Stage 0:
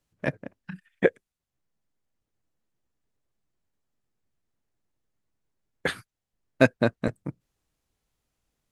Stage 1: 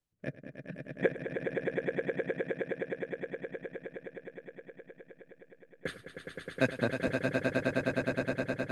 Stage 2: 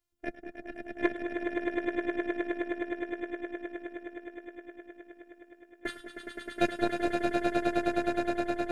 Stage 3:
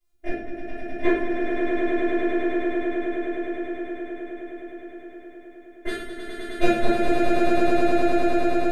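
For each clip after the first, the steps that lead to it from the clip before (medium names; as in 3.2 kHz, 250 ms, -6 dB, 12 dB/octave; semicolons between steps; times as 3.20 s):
rotary cabinet horn 0.7 Hz; on a send: echo with a slow build-up 104 ms, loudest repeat 8, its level -6 dB; on the sum: trim -7 dB
single-diode clipper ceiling -17 dBFS; robot voice 346 Hz; two-band feedback delay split 1.3 kHz, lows 190 ms, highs 106 ms, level -15.5 dB; trim +5 dB
reverberation RT60 0.95 s, pre-delay 3 ms, DRR -12 dB; trim -6 dB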